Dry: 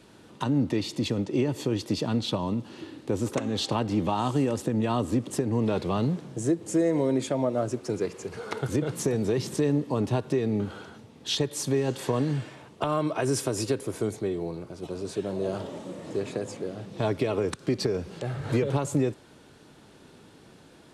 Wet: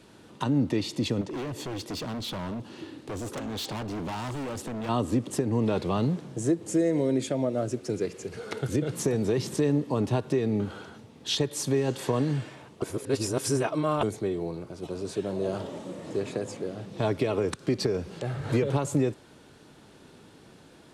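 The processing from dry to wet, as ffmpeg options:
ffmpeg -i in.wav -filter_complex "[0:a]asettb=1/sr,asplit=3[link_01][link_02][link_03];[link_01]atrim=end=1.214[link_04];[link_02]atrim=start=1.21:end=4.89,asetpts=PTS-STARTPTS,afade=type=in:duration=0.004:curve=qsin,afade=type=out:start_time=3.676:duration=0.004:curve=qsin,volume=31.5dB,asoftclip=hard,volume=-31.5dB[link_05];[link_03]atrim=start=4.886[link_06];[link_04][link_05]acrossfade=duration=0.004:curve1=hsin:curve2=qsin[link_07];[link_07][link_06]acrossfade=duration=0.004:curve1=qsin:curve2=hsin,asettb=1/sr,asplit=3[link_08][link_09][link_10];[link_08]atrim=end=6.734[link_11];[link_09]atrim=start=6.73:end=8.94,asetpts=PTS-STARTPTS,afade=type=in:duration=0.004:curve=qsin,afade=type=out:start_time=2.206:duration=0.004:curve=qsin,equalizer=frequency=990:width=1.7:gain=-7.5[link_12];[link_10]atrim=start=8.936[link_13];[link_11][link_12]acrossfade=duration=0.004:curve1=hsin:curve2=qsin[link_14];[link_14][link_13]acrossfade=duration=0.004:curve1=qsin:curve2=hsin,asplit=3[link_15][link_16][link_17];[link_15]atrim=end=12.822[link_18];[link_16]atrim=start=12.818:end=14.032,asetpts=PTS-STARTPTS,areverse[link_19];[link_17]atrim=start=14.028[link_20];[link_18][link_19]acrossfade=duration=0.004:curve1=hsin:curve2=hsin[link_21];[link_21][link_20]acrossfade=duration=0.004:curve1=hsin:curve2=hsin" out.wav

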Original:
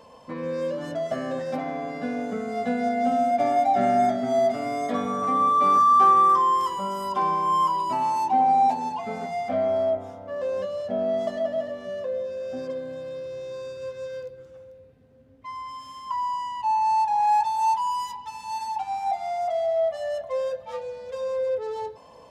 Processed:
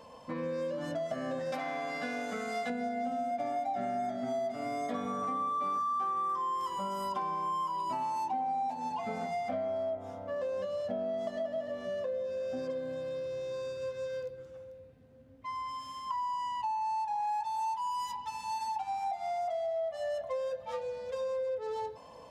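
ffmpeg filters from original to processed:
ffmpeg -i in.wav -filter_complex "[0:a]asettb=1/sr,asplit=3[link_01][link_02][link_03];[link_01]atrim=end=1.524[link_04];[link_02]atrim=start=1.52:end=2.7,asetpts=PTS-STARTPTS,afade=type=in:duration=0.004:curve=qsin,afade=type=out:start_time=1.176:duration=0.004:curve=qsin,tiltshelf=frequency=690:gain=-8[link_05];[link_03]atrim=start=2.696[link_06];[link_04][link_05]acrossfade=duration=0.004:curve1=hsin:curve2=qsin[link_07];[link_07][link_06]acrossfade=duration=0.004:curve1=qsin:curve2=hsin,bandreject=frequency=410:width=12,acompressor=threshold=-30dB:ratio=6,volume=-2dB" out.wav

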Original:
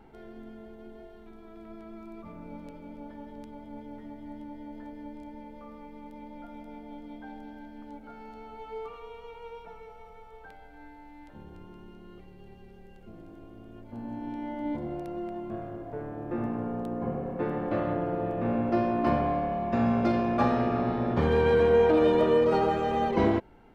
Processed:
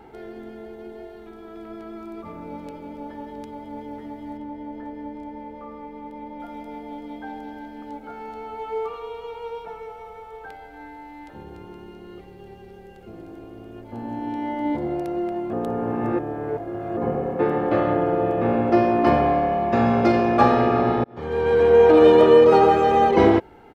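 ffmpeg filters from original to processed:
ffmpeg -i in.wav -filter_complex "[0:a]asettb=1/sr,asplit=3[link_01][link_02][link_03];[link_01]atrim=end=4.374[link_04];[link_02]atrim=start=4.37:end=6.4,asetpts=PTS-STARTPTS,afade=type=in:duration=0.004:curve=qsin,afade=type=out:start_time=2.026:duration=0.004:curve=qsin,highshelf=frequency=3500:gain=-11[link_05];[link_03]atrim=start=6.396[link_06];[link_04][link_05]acrossfade=duration=0.004:curve1=hsin:curve2=qsin[link_07];[link_07][link_06]acrossfade=duration=0.004:curve1=qsin:curve2=hsin,asplit=4[link_08][link_09][link_10][link_11];[link_08]atrim=end=15.532[link_12];[link_09]atrim=start=15.528:end=16.972,asetpts=PTS-STARTPTS,areverse[link_13];[link_10]atrim=start=16.968:end=21.04,asetpts=PTS-STARTPTS,afade=type=out:start_time=4.068:duration=0.004:curve=hsin[link_14];[link_11]atrim=start=21.04,asetpts=PTS-STARTPTS,afade=type=in:duration=1.03[link_15];[link_12][link_13]acrossfade=duration=0.004:curve1=hsin:curve2=hsin[link_16];[link_14][link_15]concat=n=2:v=0:a=1[link_17];[link_16][link_17]acrossfade=duration=0.004:curve1=hsin:curve2=hsin,highpass=frequency=110:poles=1,equalizer=frequency=650:width_type=o:width=0.35:gain=2,aecho=1:1:2.4:0.35,volume=8.5dB" out.wav

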